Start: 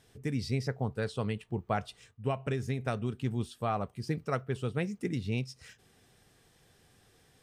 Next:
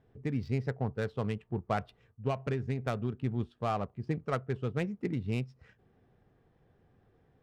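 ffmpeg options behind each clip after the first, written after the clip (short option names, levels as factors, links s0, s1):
-af "adynamicsmooth=sensitivity=6:basefreq=1200"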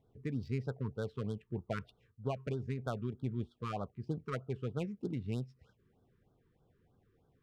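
-af "afftfilt=real='re*(1-between(b*sr/1024,630*pow(2300/630,0.5+0.5*sin(2*PI*3.2*pts/sr))/1.41,630*pow(2300/630,0.5+0.5*sin(2*PI*3.2*pts/sr))*1.41))':imag='im*(1-between(b*sr/1024,630*pow(2300/630,0.5+0.5*sin(2*PI*3.2*pts/sr))/1.41,630*pow(2300/630,0.5+0.5*sin(2*PI*3.2*pts/sr))*1.41))':win_size=1024:overlap=0.75,volume=0.596"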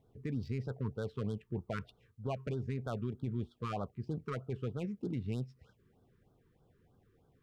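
-af "alimiter=level_in=2.24:limit=0.0631:level=0:latency=1:release=13,volume=0.447,volume=1.33"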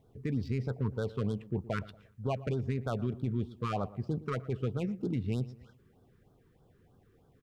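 -filter_complex "[0:a]asplit=2[s0][s1];[s1]adelay=117,lowpass=f=1600:p=1,volume=0.141,asplit=2[s2][s3];[s3]adelay=117,lowpass=f=1600:p=1,volume=0.4,asplit=2[s4][s5];[s5]adelay=117,lowpass=f=1600:p=1,volume=0.4[s6];[s0][s2][s4][s6]amix=inputs=4:normalize=0,volume=1.68"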